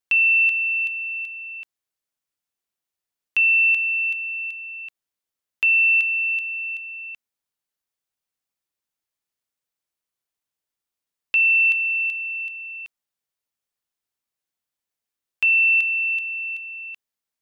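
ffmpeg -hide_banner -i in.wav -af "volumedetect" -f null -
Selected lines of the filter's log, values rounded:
mean_volume: -24.9 dB
max_volume: -13.6 dB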